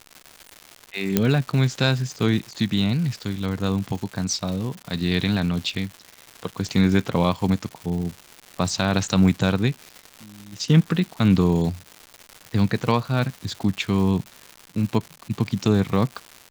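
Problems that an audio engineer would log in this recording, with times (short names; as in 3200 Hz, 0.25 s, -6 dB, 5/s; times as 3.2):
crackle 290/s -30 dBFS
1.17 pop -3 dBFS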